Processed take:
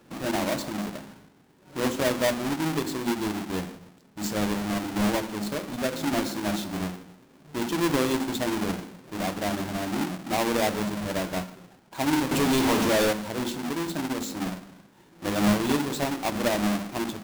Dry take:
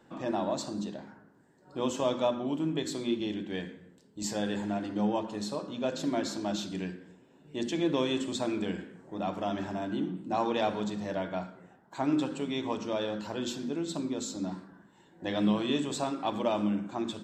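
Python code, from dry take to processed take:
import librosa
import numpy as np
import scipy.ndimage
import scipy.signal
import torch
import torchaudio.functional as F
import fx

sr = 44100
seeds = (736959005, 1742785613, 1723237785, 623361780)

p1 = fx.halfwave_hold(x, sr)
p2 = fx.power_curve(p1, sr, exponent=0.35, at=(12.31, 13.13))
p3 = p2 + fx.echo_single(p2, sr, ms=143, db=-23.5, dry=0)
y = fx.end_taper(p3, sr, db_per_s=210.0)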